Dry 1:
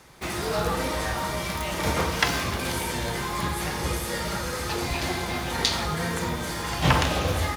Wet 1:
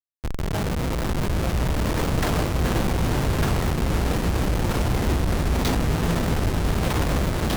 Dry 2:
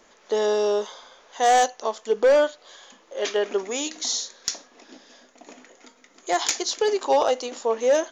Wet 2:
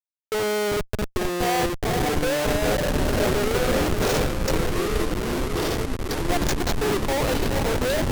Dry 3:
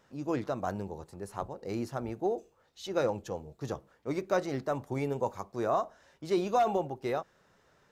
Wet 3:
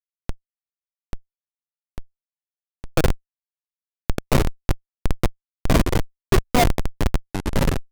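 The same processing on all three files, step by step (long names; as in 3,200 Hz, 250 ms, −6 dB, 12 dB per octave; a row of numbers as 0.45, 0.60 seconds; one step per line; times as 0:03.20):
feedback delay with all-pass diffusion 481 ms, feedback 67%, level −6.5 dB
comparator with hysteresis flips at −21.5 dBFS
delay with pitch and tempo change per echo 782 ms, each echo −3 semitones, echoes 3
loudness normalisation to −24 LKFS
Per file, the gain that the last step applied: +2.0, 0.0, +18.5 decibels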